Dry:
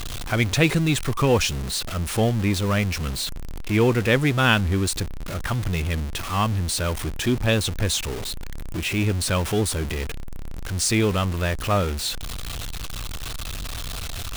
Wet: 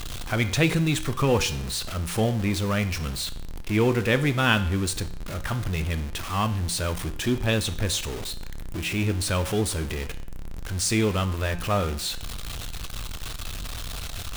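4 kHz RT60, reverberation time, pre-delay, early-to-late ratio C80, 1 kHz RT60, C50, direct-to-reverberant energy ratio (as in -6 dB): 0.60 s, 0.65 s, 6 ms, 17.0 dB, 0.65 s, 14.0 dB, 10.0 dB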